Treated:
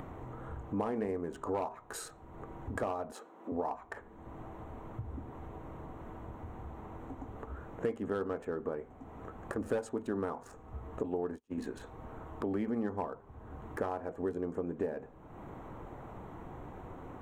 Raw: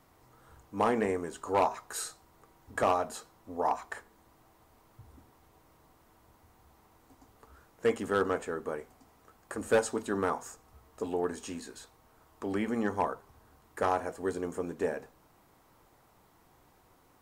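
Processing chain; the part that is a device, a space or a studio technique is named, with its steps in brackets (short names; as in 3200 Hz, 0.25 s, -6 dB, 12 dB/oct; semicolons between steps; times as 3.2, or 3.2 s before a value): Wiener smoothing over 9 samples; 11.03–11.58 gate -37 dBFS, range -38 dB; upward and downward compression (upward compressor, threshold -45 dBFS; compressor 4:1, threshold -43 dBFS, peak gain reduction 18 dB); 3.12–3.52 HPF 250 Hz 24 dB/oct; tilt shelf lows +5 dB; gain +6 dB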